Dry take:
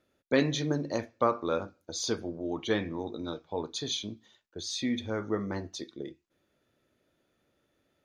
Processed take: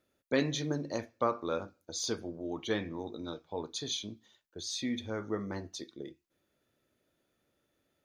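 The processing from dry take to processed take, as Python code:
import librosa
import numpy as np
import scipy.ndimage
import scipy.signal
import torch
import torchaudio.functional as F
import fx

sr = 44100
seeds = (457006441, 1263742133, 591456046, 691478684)

y = fx.high_shelf(x, sr, hz=7800.0, db=7.5)
y = y * 10.0 ** (-4.0 / 20.0)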